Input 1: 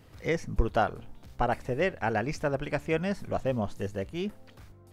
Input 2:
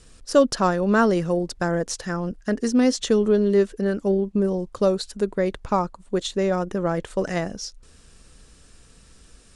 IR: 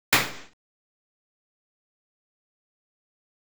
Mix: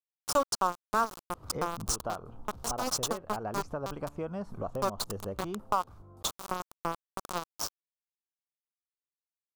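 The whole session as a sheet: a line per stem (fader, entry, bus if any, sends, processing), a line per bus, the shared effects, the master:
+1.0 dB, 1.30 s, no send, downward compressor 3 to 1, threshold −36 dBFS, peak gain reduction 14 dB
+0.5 dB, 0.00 s, no send, spectral tilt +4.5 dB per octave; centre clipping without the shift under −18 dBFS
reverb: not used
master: high shelf with overshoot 1,500 Hz −8 dB, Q 3; downward compressor 2 to 1, threshold −30 dBFS, peak gain reduction 10.5 dB

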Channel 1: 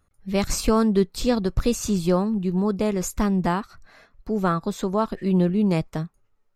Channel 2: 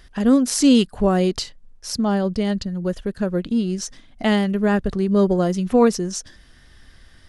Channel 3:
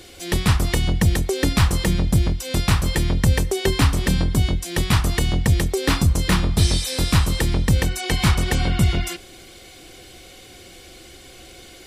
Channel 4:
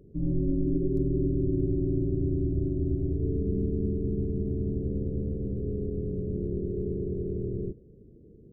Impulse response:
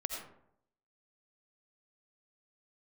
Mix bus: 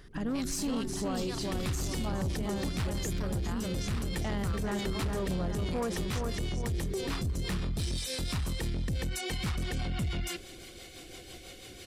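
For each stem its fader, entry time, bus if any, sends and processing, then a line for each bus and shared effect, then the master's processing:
+1.0 dB, 0.00 s, no send, echo send −13 dB, guitar amp tone stack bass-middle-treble 10-0-10
−7.5 dB, 0.00 s, no send, echo send −5.5 dB, parametric band 1,100 Hz +5 dB 1.4 octaves
−2.0 dB, 1.20 s, no send, no echo send, rotating-speaker cabinet horn 6 Hz
−5.5 dB, 0.00 s, no send, no echo send, no processing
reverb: not used
echo: repeating echo 413 ms, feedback 41%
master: soft clipping −17 dBFS, distortion −14 dB; brickwall limiter −27 dBFS, peak gain reduction 10 dB

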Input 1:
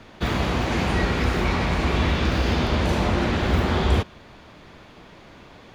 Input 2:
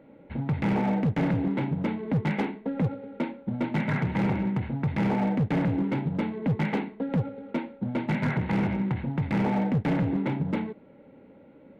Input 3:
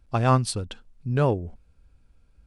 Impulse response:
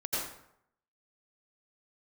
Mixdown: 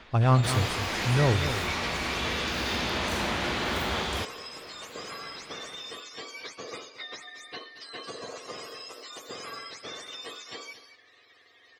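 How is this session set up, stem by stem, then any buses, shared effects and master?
−2.0 dB, 0.00 s, bus A, no send, echo send −4.5 dB, spectral tilt +3 dB per octave; automatic ducking −13 dB, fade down 0.25 s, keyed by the third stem
+1.5 dB, 0.00 s, bus A, no send, echo send −14 dB, frequency axis turned over on the octave scale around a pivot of 1,000 Hz; downward compressor 6 to 1, threshold −36 dBFS, peak gain reduction 9.5 dB
−4.0 dB, 0.00 s, no bus, no send, echo send −10 dB, parametric band 100 Hz +9.5 dB 0.7 octaves
bus A: 0.0 dB, low-pass filter 3,400 Hz 12 dB per octave; downward compressor, threshold −30 dBFS, peak gain reduction 7 dB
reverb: not used
echo: single-tap delay 225 ms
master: no processing

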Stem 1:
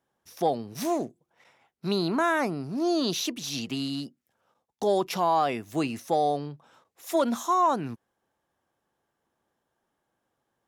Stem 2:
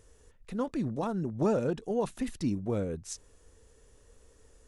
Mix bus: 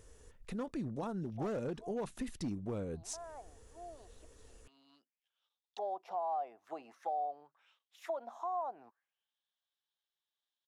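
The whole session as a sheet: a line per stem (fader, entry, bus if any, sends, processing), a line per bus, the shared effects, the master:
+1.0 dB, 0.95 s, no send, bass and treble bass −9 dB, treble +3 dB; envelope filter 730–3,700 Hz, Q 4.7, down, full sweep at −28 dBFS; automatic ducking −16 dB, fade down 1.85 s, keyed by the second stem
+0.5 dB, 0.00 s, no send, hard clipping −24.5 dBFS, distortion −16 dB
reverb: not used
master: downward compressor 2 to 1, threshold −42 dBFS, peak gain reduction 10.5 dB

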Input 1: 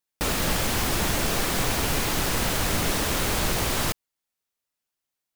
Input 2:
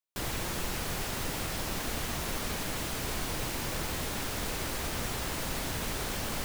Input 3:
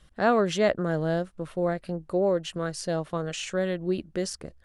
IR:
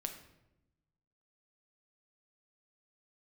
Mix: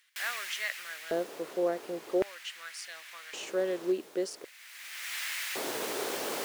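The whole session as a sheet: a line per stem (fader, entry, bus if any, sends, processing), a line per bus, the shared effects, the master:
−13.5 dB, 0.00 s, no send, upward compression, threshold −34 dBFS; high-shelf EQ 6,500 Hz −9.5 dB; downward compressor 3 to 1, threshold −35 dBFS, peak gain reduction 11 dB
−0.5 dB, 0.00 s, no send, automatic ducking −19 dB, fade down 1.65 s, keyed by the third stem
−7.0 dB, 0.00 s, no send, no processing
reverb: not used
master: auto-filter high-pass square 0.45 Hz 400–2,000 Hz

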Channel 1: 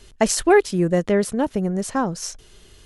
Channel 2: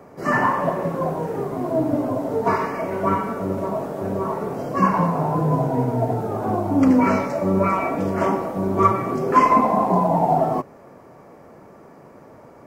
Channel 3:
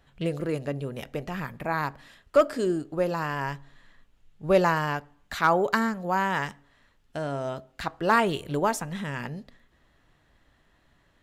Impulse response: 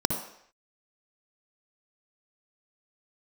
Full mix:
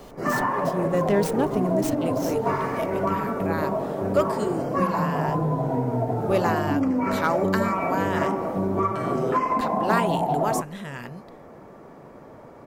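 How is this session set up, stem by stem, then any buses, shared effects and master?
−3.0 dB, 0.00 s, no send, volume swells 667 ms; windowed peak hold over 3 samples
+0.5 dB, 0.00 s, no send, low-pass filter 2,900 Hz 6 dB per octave; downward compressor, threshold −21 dBFS, peak gain reduction 11 dB
−3.0 dB, 1.80 s, no send, no processing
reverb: not used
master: high-shelf EQ 8,400 Hz +9 dB

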